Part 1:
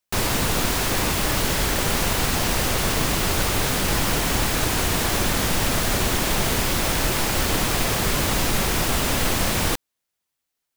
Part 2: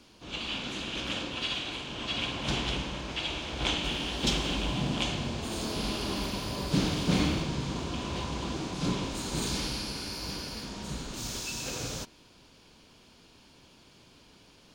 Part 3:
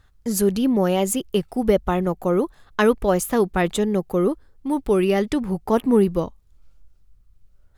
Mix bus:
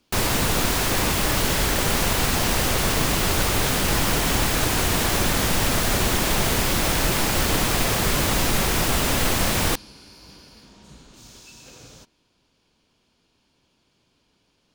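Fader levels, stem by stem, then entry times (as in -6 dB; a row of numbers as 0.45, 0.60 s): +0.5 dB, -10.0 dB, off; 0.00 s, 0.00 s, off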